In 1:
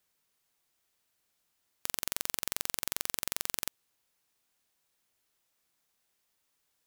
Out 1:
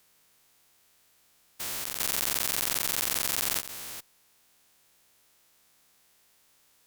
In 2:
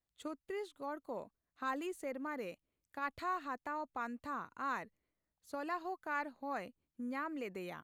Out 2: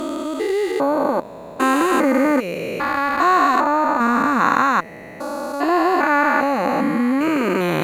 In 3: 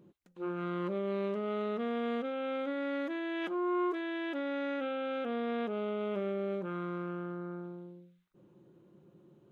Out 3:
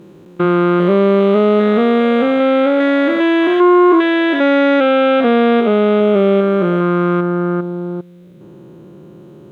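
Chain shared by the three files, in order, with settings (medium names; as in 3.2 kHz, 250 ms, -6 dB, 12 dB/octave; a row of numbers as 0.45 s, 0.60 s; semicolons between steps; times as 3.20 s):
spectrogram pixelated in time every 400 ms; Chebyshev shaper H 5 -20 dB, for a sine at -12.5 dBFS; peak normalisation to -2 dBFS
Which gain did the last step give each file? +11.0 dB, +26.5 dB, +20.0 dB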